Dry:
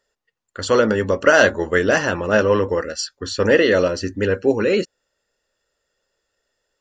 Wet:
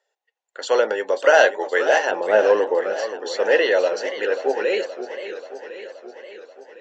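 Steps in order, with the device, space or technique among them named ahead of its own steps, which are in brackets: phone speaker on a table (cabinet simulation 430–7000 Hz, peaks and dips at 790 Hz +9 dB, 1.2 kHz -9 dB, 5 kHz -7 dB); 2.11–3.16 s: RIAA curve playback; modulated delay 529 ms, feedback 63%, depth 167 cents, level -11.5 dB; trim -1 dB

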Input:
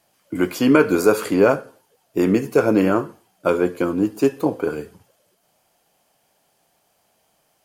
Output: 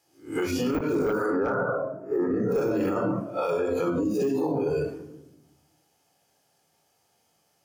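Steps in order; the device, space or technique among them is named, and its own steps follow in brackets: reverse spectral sustain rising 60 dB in 0.34 s; 0.99–2.52 s: resonant high shelf 2.1 kHz -13 dB, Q 3; simulated room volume 3800 m³, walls furnished, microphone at 4 m; spectral noise reduction 14 dB; broadcast voice chain (high-pass 74 Hz 12 dB/octave; de-esser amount 75%; compression 4:1, threshold -23 dBFS, peak gain reduction 21.5 dB; peaking EQ 5.8 kHz +6 dB 0.72 oct; peak limiter -23 dBFS, peak gain reduction 19.5 dB); trim +4.5 dB

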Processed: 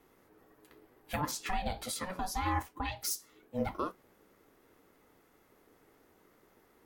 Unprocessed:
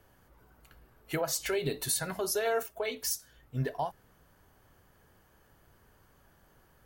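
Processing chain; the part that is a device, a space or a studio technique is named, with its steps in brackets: 1.31–3.01 s: treble shelf 7.3 kHz -11 dB; alien voice (ring modulator 370 Hz; flange 2 Hz, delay 6.8 ms, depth 5.6 ms, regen -65%); trim +5 dB

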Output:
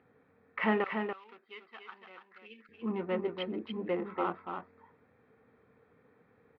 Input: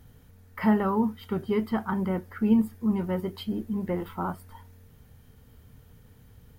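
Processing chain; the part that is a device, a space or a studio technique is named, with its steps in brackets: local Wiener filter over 15 samples; phone earpiece (cabinet simulation 480–3000 Hz, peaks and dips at 630 Hz -6 dB, 910 Hz -8 dB, 1.5 kHz -4 dB, 2.6 kHz +8 dB); 2.39–2.73 s: time-frequency box 580–1600 Hz -24 dB; 0.84–2.69 s: differentiator; delay 287 ms -6 dB; trim +4.5 dB

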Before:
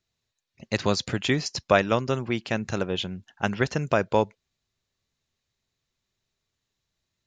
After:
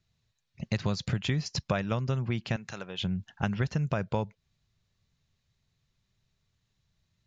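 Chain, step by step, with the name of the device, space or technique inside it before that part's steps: jukebox (low-pass 6.9 kHz 12 dB/octave; resonant low shelf 220 Hz +8 dB, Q 1.5; compression 4:1, threshold -29 dBFS, peak gain reduction 13.5 dB); 2.56–3.02 s: high-pass 880 Hz 6 dB/octave; trim +1.5 dB

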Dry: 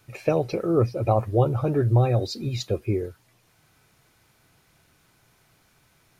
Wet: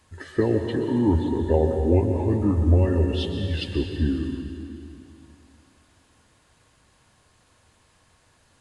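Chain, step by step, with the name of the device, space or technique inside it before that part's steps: slowed and reverbed (tape speed -28%; reverberation RT60 2.6 s, pre-delay 117 ms, DRR 4.5 dB)

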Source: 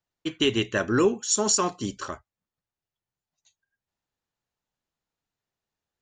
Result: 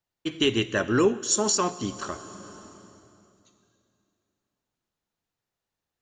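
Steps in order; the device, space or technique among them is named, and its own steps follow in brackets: compressed reverb return (on a send at -5.5 dB: reverberation RT60 2.6 s, pre-delay 49 ms + compression 5:1, threshold -33 dBFS, peak gain reduction 14 dB); 1.50–1.96 s: on the sum: low-pass 7 kHz 12 dB/octave

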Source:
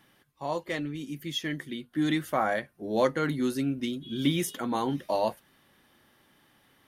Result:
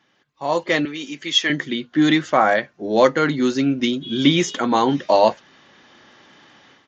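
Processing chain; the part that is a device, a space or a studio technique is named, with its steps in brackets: 0.85–1.50 s: frequency weighting A; Bluetooth headset (high-pass 240 Hz 6 dB/octave; level rider gain up to 15 dB; resampled via 16 kHz; SBC 64 kbps 16 kHz)

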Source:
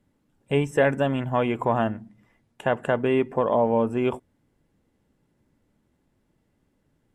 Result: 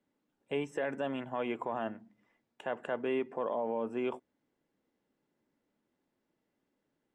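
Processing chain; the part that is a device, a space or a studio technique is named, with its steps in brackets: DJ mixer with the lows and highs turned down (three-band isolator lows -18 dB, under 210 Hz, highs -13 dB, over 7.2 kHz; peak limiter -16 dBFS, peak gain reduction 7.5 dB); trim -8 dB

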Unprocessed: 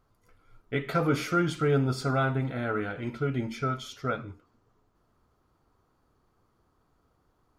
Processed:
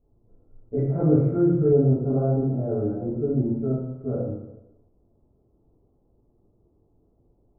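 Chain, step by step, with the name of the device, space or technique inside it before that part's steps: next room (low-pass 580 Hz 24 dB/octave; reverberation RT60 0.95 s, pre-delay 5 ms, DRR -10 dB); 0.78–1.73 s: ten-band graphic EQ 125 Hz +6 dB, 250 Hz -3 dB, 2 kHz +8 dB, 4 kHz +11 dB; trim -3 dB

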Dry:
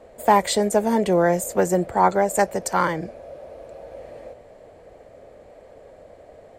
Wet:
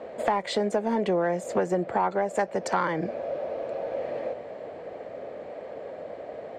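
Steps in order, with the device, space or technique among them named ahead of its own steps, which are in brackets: AM radio (band-pass 170–3600 Hz; compression 6:1, threshold -30 dBFS, peak gain reduction 18 dB; saturation -20.5 dBFS, distortion -22 dB); trim +8 dB

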